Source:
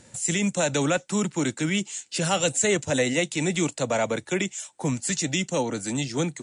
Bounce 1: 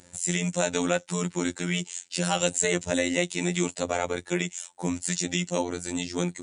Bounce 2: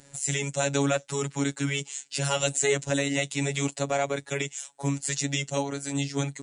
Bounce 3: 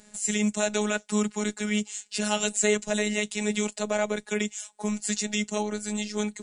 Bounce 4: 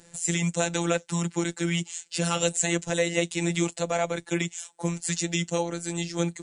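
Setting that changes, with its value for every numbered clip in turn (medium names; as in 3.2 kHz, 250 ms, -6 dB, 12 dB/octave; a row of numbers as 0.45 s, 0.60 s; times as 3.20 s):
robot voice, frequency: 88 Hz, 140 Hz, 210 Hz, 170 Hz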